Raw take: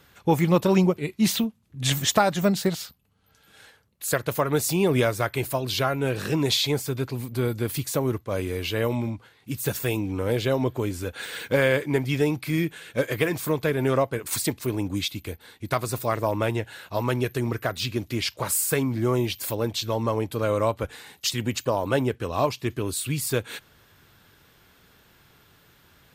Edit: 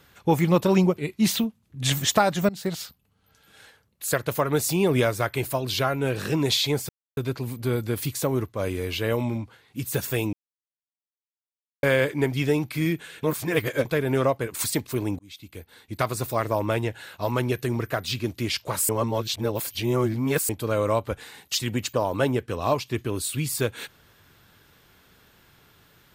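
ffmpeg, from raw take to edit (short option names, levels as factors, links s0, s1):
-filter_complex "[0:a]asplit=10[s0][s1][s2][s3][s4][s5][s6][s7][s8][s9];[s0]atrim=end=2.49,asetpts=PTS-STARTPTS,afade=t=out:st=2.486:d=0.004:c=hsin:silence=0.105925[s10];[s1]atrim=start=2.49:end=6.89,asetpts=PTS-STARTPTS,afade=t=in:d=0.32:silence=0.105925,afade=t=out:st=4.396:d=0.004:c=hsin,apad=pad_dur=0.28[s11];[s2]atrim=start=6.89:end=10.05,asetpts=PTS-STARTPTS,afade=t=in:d=0.004:c=hsin,afade=t=out:st=3.156:d=0.004:c=hsin[s12];[s3]atrim=start=10.05:end=11.55,asetpts=PTS-STARTPTS,volume=0[s13];[s4]atrim=start=11.55:end=12.952,asetpts=PTS-STARTPTS,afade=t=in:d=0.004:c=hsin[s14];[s5]atrim=start=12.948:end=13.572,asetpts=PTS-STARTPTS,areverse[s15];[s6]atrim=start=13.568:end=14.91,asetpts=PTS-STARTPTS,afade=t=out:st=1.338:d=0.004:c=hsin[s16];[s7]atrim=start=14.91:end=18.612,asetpts=PTS-STARTPTS,afade=t=in:d=0.81[s17];[s8]atrim=start=18.608:end=20.212,asetpts=PTS-STARTPTS,areverse[s18];[s9]atrim=start=20.208[s19];[s10][s11][s12][s13][s14]concat=n=5:v=0:a=1[s20];[s20][s15]acrossfade=d=0.004:c1=hsin:c2=hsin[s21];[s16][s17]concat=n=2:v=0:a=1[s22];[s21][s22]acrossfade=d=0.004:c1=hsin:c2=hsin[s23];[s23][s18]acrossfade=d=0.004:c1=hsin:c2=hsin[s24];[s24][s19]acrossfade=d=0.004:c1=hsin:c2=hsin"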